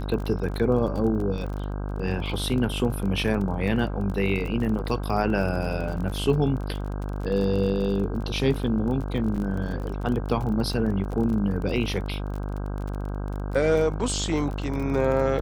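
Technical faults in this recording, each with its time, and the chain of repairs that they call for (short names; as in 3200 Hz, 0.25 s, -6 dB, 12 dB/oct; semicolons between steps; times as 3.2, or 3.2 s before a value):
buzz 50 Hz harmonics 32 -30 dBFS
crackle 30/s -31 dBFS
9.36–9.37 gap 5.1 ms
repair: de-click; de-hum 50 Hz, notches 32; interpolate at 9.36, 5.1 ms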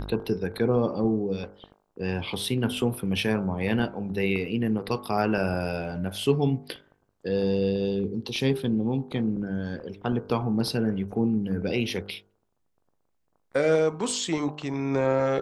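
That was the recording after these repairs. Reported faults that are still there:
none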